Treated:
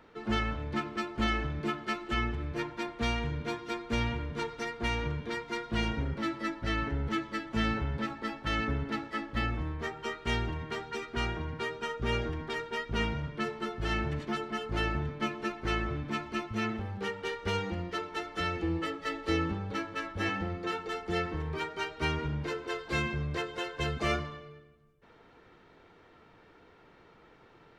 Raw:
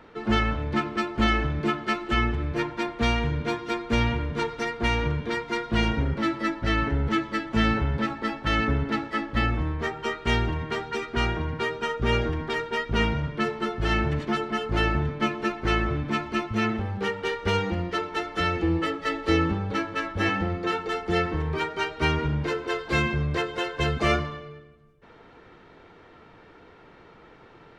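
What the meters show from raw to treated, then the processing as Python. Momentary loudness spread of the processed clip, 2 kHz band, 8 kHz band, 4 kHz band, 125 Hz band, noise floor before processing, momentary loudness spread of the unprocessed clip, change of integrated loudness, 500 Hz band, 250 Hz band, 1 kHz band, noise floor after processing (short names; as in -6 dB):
5 LU, -7.0 dB, -4.5 dB, -6.0 dB, -7.5 dB, -52 dBFS, 5 LU, -7.0 dB, -7.5 dB, -7.5 dB, -7.5 dB, -59 dBFS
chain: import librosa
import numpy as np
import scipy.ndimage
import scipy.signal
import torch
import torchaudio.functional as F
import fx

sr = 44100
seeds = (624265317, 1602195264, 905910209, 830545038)

y = fx.high_shelf(x, sr, hz=5300.0, db=5.0)
y = y * librosa.db_to_amplitude(-7.5)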